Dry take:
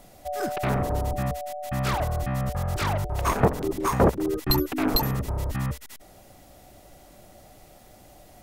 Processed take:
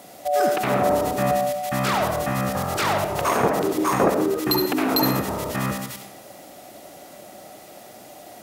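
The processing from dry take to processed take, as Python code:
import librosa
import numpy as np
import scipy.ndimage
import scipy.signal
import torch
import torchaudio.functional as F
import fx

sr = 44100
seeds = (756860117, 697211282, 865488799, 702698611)

p1 = scipy.signal.sosfilt(scipy.signal.butter(2, 210.0, 'highpass', fs=sr, output='sos'), x)
p2 = fx.over_compress(p1, sr, threshold_db=-30.0, ratio=-1.0)
p3 = p1 + (p2 * 10.0 ** (1.0 / 20.0))
y = fx.rev_freeverb(p3, sr, rt60_s=0.79, hf_ratio=0.7, predelay_ms=30, drr_db=4.0)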